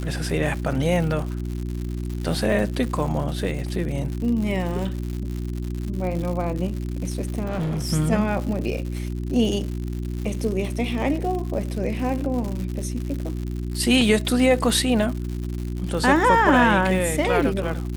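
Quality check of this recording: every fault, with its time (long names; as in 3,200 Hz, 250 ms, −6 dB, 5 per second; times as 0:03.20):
surface crackle 150 per second −29 dBFS
mains hum 60 Hz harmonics 6 −28 dBFS
0:07.44–0:07.90: clipping −22.5 dBFS
0:14.01: drop-out 2.3 ms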